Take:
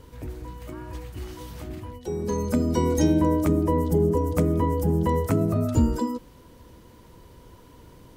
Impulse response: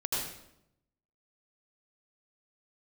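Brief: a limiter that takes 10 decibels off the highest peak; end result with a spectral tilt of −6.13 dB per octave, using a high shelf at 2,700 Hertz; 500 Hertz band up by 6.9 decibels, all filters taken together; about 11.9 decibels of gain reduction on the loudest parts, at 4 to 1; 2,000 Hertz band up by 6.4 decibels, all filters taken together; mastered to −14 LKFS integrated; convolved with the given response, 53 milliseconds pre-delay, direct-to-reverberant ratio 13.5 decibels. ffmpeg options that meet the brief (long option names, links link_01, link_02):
-filter_complex "[0:a]equalizer=frequency=500:width_type=o:gain=8,equalizer=frequency=2000:width_type=o:gain=8.5,highshelf=frequency=2700:gain=-3.5,acompressor=threshold=-28dB:ratio=4,alimiter=level_in=2dB:limit=-24dB:level=0:latency=1,volume=-2dB,asplit=2[link_01][link_02];[1:a]atrim=start_sample=2205,adelay=53[link_03];[link_02][link_03]afir=irnorm=-1:irlink=0,volume=-19.5dB[link_04];[link_01][link_04]amix=inputs=2:normalize=0,volume=20.5dB"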